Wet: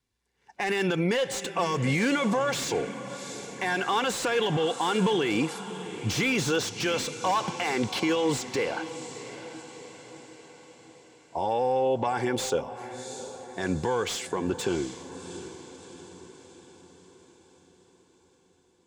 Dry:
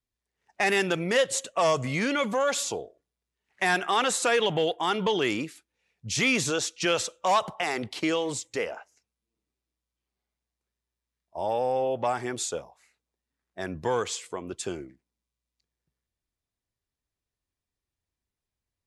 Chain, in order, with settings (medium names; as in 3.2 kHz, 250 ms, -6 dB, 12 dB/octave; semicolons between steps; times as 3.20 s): low-pass 11 kHz; treble shelf 8.1 kHz -3 dB; in parallel at +3 dB: compression, threshold -33 dBFS, peak gain reduction 13.5 dB; on the sum: peak limiter -19 dBFS, peak gain reduction 9.5 dB; comb of notches 630 Hz; echo that smears into a reverb 708 ms, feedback 53%, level -13 dB; slew-rate limiter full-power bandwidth 110 Hz; trim +3 dB